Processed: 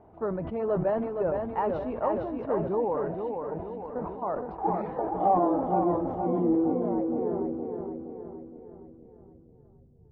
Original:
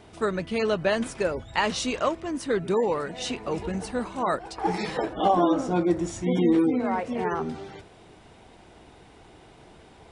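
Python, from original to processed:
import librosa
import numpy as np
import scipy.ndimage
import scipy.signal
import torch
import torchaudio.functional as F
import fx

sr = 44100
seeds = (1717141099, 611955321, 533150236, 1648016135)

y = scipy.signal.sosfilt(scipy.signal.butter(2, 3800.0, 'lowpass', fs=sr, output='sos'), x)
y = fx.level_steps(y, sr, step_db=13, at=(3.2, 4.49))
y = fx.filter_sweep_lowpass(y, sr, from_hz=830.0, to_hz=130.0, start_s=6.05, end_s=9.81, q=1.8)
y = fx.echo_feedback(y, sr, ms=467, feedback_pct=49, wet_db=-5.5)
y = fx.sustainer(y, sr, db_per_s=48.0)
y = F.gain(torch.from_numpy(y), -6.5).numpy()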